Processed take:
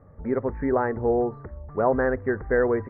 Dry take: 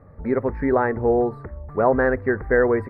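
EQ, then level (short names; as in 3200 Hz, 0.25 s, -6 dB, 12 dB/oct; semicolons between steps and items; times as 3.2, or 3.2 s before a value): LPF 1900 Hz 12 dB/oct; -3.5 dB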